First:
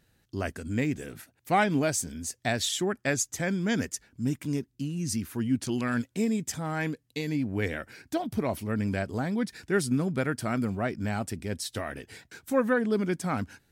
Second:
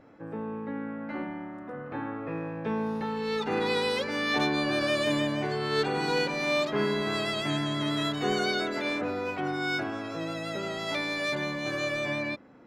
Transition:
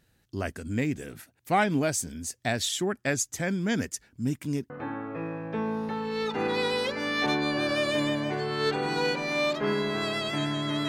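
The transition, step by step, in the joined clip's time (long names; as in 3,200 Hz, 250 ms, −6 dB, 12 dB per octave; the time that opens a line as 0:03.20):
first
0:04.70: continue with second from 0:01.82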